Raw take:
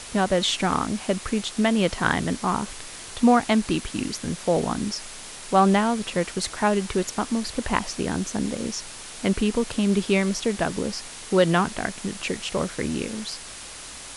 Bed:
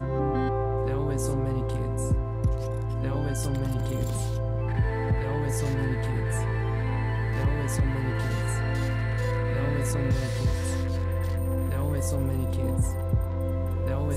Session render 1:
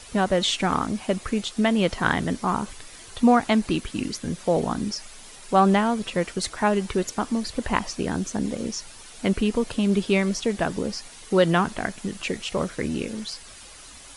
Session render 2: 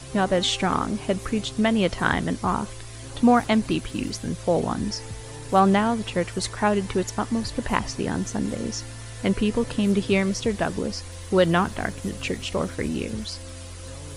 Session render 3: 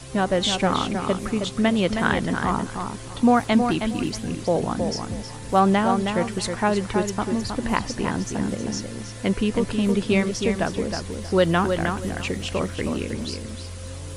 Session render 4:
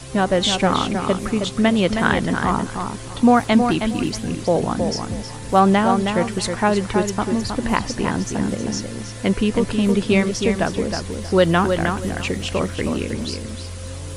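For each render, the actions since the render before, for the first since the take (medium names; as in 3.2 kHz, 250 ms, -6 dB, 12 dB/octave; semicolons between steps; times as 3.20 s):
noise reduction 9 dB, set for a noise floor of -40 dBFS
add bed -12 dB
filtered feedback delay 317 ms, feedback 23%, low-pass 4.5 kHz, level -6 dB
trim +3.5 dB; peak limiter -2 dBFS, peak gain reduction 1 dB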